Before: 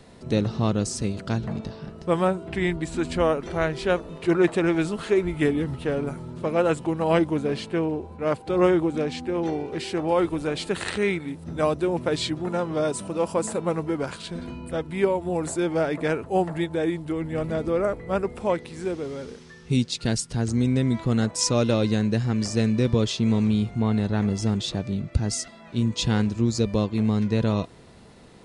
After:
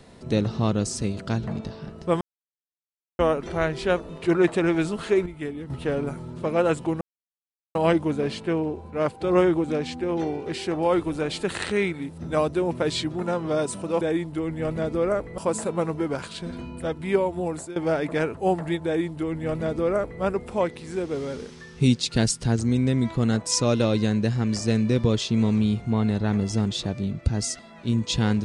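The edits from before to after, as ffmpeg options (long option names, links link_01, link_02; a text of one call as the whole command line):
ffmpeg -i in.wav -filter_complex "[0:a]asplit=11[link_01][link_02][link_03][link_04][link_05][link_06][link_07][link_08][link_09][link_10][link_11];[link_01]atrim=end=2.21,asetpts=PTS-STARTPTS,afade=type=out:start_time=2.206:duration=0.004:curve=hsin[link_12];[link_02]atrim=start=2.21:end=3.19,asetpts=PTS-STARTPTS,volume=0[link_13];[link_03]atrim=start=3.19:end=5.262,asetpts=PTS-STARTPTS,afade=type=in:duration=0.004:curve=hsin[link_14];[link_04]atrim=start=5.258:end=5.702,asetpts=PTS-STARTPTS,volume=-10dB[link_15];[link_05]atrim=start=5.698:end=7.01,asetpts=PTS-STARTPTS,afade=type=out:start_time=1.308:duration=0.004:curve=hsin,apad=pad_dur=0.74[link_16];[link_06]atrim=start=7.01:end=13.272,asetpts=PTS-STARTPTS,afade=type=in:duration=0.004:curve=hsin[link_17];[link_07]atrim=start=16.738:end=18.112[link_18];[link_08]atrim=start=13.268:end=15.65,asetpts=PTS-STARTPTS,afade=type=out:start_time=1.882:duration=0.5:curve=qsin:silence=0.133352[link_19];[link_09]atrim=start=15.65:end=19.002,asetpts=PTS-STARTPTS,afade=type=in:duration=0.004:curve=hsin:silence=0.133352[link_20];[link_10]atrim=start=18.998:end=20.452,asetpts=PTS-STARTPTS,volume=3dB[link_21];[link_11]atrim=start=20.448[link_22];[link_12][link_13][link_14]concat=n=3:v=0:a=1[link_23];[link_23][link_15]acrossfade=duration=0.004:curve1=hsin:curve2=hsin[link_24];[link_16][link_17]concat=n=2:v=0:a=1[link_25];[link_24][link_25]acrossfade=duration=0.004:curve1=hsin:curve2=hsin[link_26];[link_26][link_18]acrossfade=duration=0.004:curve1=hsin:curve2=hsin[link_27];[link_19][link_20]concat=n=2:v=0:a=1[link_28];[link_27][link_28]acrossfade=duration=0.004:curve1=hsin:curve2=hsin[link_29];[link_29][link_21]acrossfade=duration=0.004:curve1=hsin:curve2=hsin[link_30];[link_30][link_22]acrossfade=duration=0.004:curve1=hsin:curve2=hsin" out.wav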